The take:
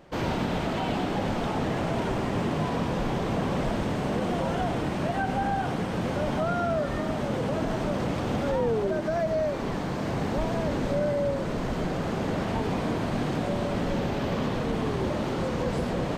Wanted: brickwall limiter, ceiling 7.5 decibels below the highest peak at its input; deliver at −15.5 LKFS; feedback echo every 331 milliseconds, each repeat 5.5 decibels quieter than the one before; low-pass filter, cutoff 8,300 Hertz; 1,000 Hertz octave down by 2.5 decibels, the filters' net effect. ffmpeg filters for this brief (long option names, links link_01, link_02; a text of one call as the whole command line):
ffmpeg -i in.wav -af "lowpass=8300,equalizer=frequency=1000:width_type=o:gain=-3.5,alimiter=limit=-23.5dB:level=0:latency=1,aecho=1:1:331|662|993|1324|1655|1986|2317:0.531|0.281|0.149|0.079|0.0419|0.0222|0.0118,volume=15.5dB" out.wav